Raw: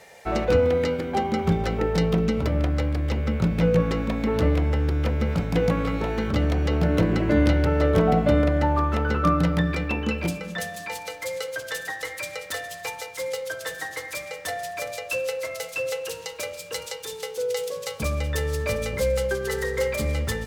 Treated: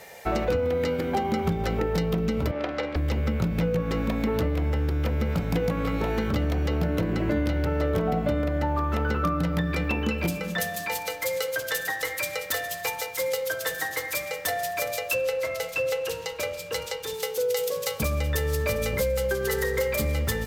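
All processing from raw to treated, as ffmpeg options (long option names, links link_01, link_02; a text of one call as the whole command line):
ffmpeg -i in.wav -filter_complex "[0:a]asettb=1/sr,asplit=3[link_01][link_02][link_03];[link_01]atrim=end=2.514[link_04];[link_02]atrim=start=2.51:end=2.96,asetpts=PTS-STARTPTS,afade=type=in:duration=0.004:curve=qsin,afade=type=out:start_time=0.446:duration=0.004:curve=qsin,acrossover=split=300 5500:gain=0.0708 1 0.0794[link_05][link_06][link_07];[link_05][link_06][link_07]amix=inputs=3:normalize=0,asplit=2[link_08][link_09];[link_09]adelay=49,volume=-11.5dB[link_10];[link_08][link_10]amix=inputs=2:normalize=0,atrim=end_sample=19845[link_11];[link_03]atrim=start=2.956[link_12];[link_04][link_11]acrossfade=duration=0.004:curve1=hsin:curve2=qsin[link_13];[link_13][link_12]acrossfade=duration=0.004:curve1=qsin:curve2=hsin,asettb=1/sr,asplit=3[link_14][link_15][link_16];[link_14]atrim=end=15.144[link_17];[link_15]atrim=start=15.14:end=17.14,asetpts=PTS-STARTPTS,afade=type=in:duration=0.004:curve=qsin,afade=type=out:start_time=1.996:duration=0.004:curve=qsin,lowpass=frequency=4000:poles=1,lowshelf=frequency=65:gain=10[link_18];[link_16]atrim=start=17.136[link_19];[link_17][link_18]acrossfade=duration=0.004:curve1=hsin:curve2=qsin[link_20];[link_20][link_19]acrossfade=duration=0.004:curve1=qsin:curve2=hsin,equalizer=frequency=14000:width=2.2:gain=13.5,acompressor=threshold=-25dB:ratio=6,volume=3dB" out.wav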